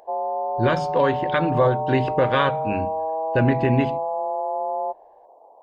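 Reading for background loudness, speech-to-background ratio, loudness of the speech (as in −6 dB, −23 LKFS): −26.5 LKFS, 4.0 dB, −22.5 LKFS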